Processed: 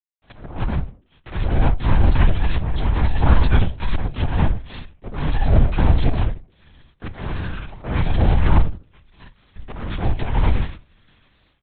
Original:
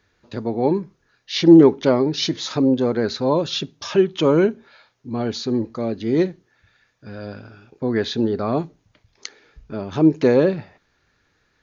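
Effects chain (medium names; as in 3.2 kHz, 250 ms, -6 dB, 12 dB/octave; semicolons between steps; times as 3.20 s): partials quantised in pitch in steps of 3 st; bass shelf 270 Hz +4.5 dB; slow attack 629 ms; level rider gain up to 8 dB; in parallel at -9 dB: fuzz box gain 33 dB, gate -40 dBFS; on the sum: word length cut 8-bit, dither none; full-wave rectifier; simulated room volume 370 m³, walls furnished, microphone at 0.52 m; LPC vocoder at 8 kHz whisper; warped record 45 rpm, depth 100 cents; trim -9.5 dB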